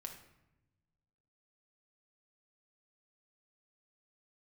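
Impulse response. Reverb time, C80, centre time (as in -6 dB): 0.95 s, 10.5 dB, 21 ms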